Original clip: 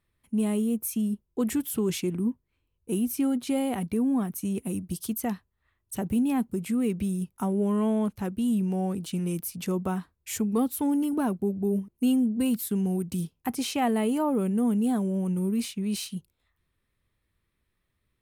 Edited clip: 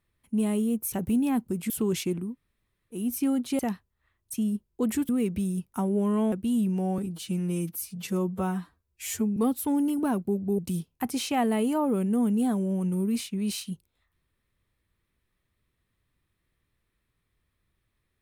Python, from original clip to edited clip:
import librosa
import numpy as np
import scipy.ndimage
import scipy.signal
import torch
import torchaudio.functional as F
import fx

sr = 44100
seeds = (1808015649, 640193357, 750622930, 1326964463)

y = fx.edit(x, sr, fx.swap(start_s=0.92, length_s=0.75, other_s=5.95, other_length_s=0.78),
    fx.room_tone_fill(start_s=2.23, length_s=0.73, crossfade_s=0.24),
    fx.cut(start_s=3.56, length_s=1.64),
    fx.cut(start_s=7.96, length_s=0.3),
    fx.stretch_span(start_s=8.92, length_s=1.59, factor=1.5),
    fx.cut(start_s=11.73, length_s=1.3), tone=tone)